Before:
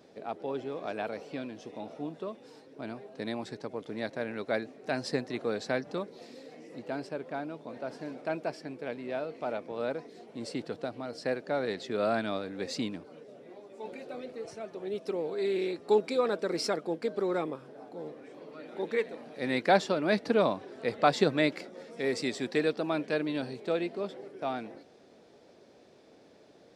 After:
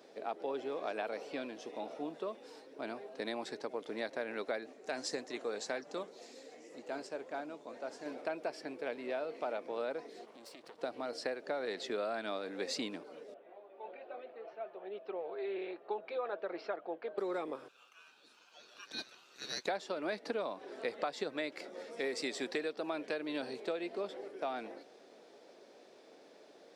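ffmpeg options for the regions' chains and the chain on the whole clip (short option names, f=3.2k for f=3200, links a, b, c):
-filter_complex "[0:a]asettb=1/sr,asplit=3[a][b][c];[a]atrim=end=4.734[d];[b]atrim=start=4.73:end=8.06,asetpts=PTS-STARTPTS,afade=t=in:d=0.004:c=qsin,afade=t=out:st=3.326:d=0.004:c=qsin,equalizer=f=7k:t=o:w=0.51:g=10.5,flanger=delay=2.3:depth=9.7:regen=79:speed=1.9:shape=triangular[e];[c]atrim=start=8.056[f];[d][e]acrossfade=d=0.004:c1=hsin:c2=qsin[g];[g][f]acrossfade=d=0.004:c1=qsin:c2=hsin,asettb=1/sr,asplit=3[h][i][j];[h]atrim=end=10.254[k];[i]atrim=start=10.25:end=10.82,asetpts=PTS-STARTPTS,afade=t=in:d=0.004:c=qsin,afade=t=out:st=0.566:d=0.004:c=qsin,aeval=exprs='max(val(0),0)':c=same,acompressor=threshold=-46dB:ratio=6:attack=3.2:release=140:knee=1:detection=peak[l];[j]atrim=start=10.816[m];[k][l]acrossfade=d=0.004:c1=hsin:c2=qsin[n];[n][m]acrossfade=d=0.004:c1=qsin:c2=hsin,asettb=1/sr,asplit=3[o][p][q];[o]atrim=end=13.344[r];[p]atrim=start=13.34:end=17.18,asetpts=PTS-STARTPTS,afade=t=in:d=0.004:c=qsin,afade=t=out:st=3.836:d=0.004:c=qsin,flanger=delay=0.4:depth=2.2:regen=-78:speed=1.2:shape=triangular,highpass=240,equalizer=f=260:t=q:w=4:g=-10,equalizer=f=450:t=q:w=4:g=-5,equalizer=f=700:t=q:w=4:g=5,equalizer=f=2.1k:t=q:w=4:g=-5,lowpass=f=2.9k:w=0.5412,lowpass=f=2.9k:w=1.3066[s];[q]atrim=start=17.176[t];[r][s]acrossfade=d=0.004:c1=hsin:c2=qsin[u];[u][t]acrossfade=d=0.004:c1=qsin:c2=hsin,asettb=1/sr,asplit=3[v][w][x];[v]atrim=end=17.684[y];[w]atrim=start=17.68:end=19.67,asetpts=PTS-STARTPTS,afade=t=in:d=0.004:c=qsin,afade=t=out:st=1.986:d=0.004:c=qsin,highpass=1.4k,aeval=exprs='val(0)*sin(2*PI*2000*n/s)':c=same[z];[x]atrim=start=19.666[aa];[y][z]acrossfade=d=0.004:c1=hsin:c2=qsin[ab];[ab][aa]acrossfade=d=0.004:c1=qsin:c2=hsin,highpass=340,acompressor=threshold=-34dB:ratio=12,volume=1dB"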